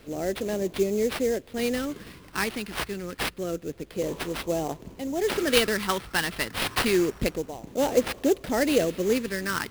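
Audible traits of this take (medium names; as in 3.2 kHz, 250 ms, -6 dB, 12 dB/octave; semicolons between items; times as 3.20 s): phasing stages 2, 0.28 Hz, lowest notch 600–1400 Hz; aliases and images of a low sample rate 6.9 kHz, jitter 20%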